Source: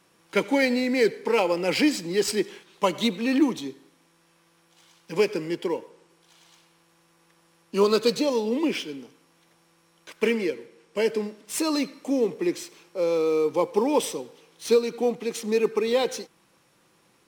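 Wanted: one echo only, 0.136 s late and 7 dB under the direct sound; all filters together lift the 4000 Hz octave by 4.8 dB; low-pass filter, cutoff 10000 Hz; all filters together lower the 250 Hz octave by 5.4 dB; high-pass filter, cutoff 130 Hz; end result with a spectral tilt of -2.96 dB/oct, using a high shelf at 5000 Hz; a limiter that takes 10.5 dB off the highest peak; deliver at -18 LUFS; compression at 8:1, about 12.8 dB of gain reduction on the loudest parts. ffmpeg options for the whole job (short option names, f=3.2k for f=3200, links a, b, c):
-af "highpass=130,lowpass=10k,equalizer=f=250:t=o:g=-6.5,equalizer=f=4k:t=o:g=7.5,highshelf=f=5k:g=-3.5,acompressor=threshold=-31dB:ratio=8,alimiter=level_in=5dB:limit=-24dB:level=0:latency=1,volume=-5dB,aecho=1:1:136:0.447,volume=20dB"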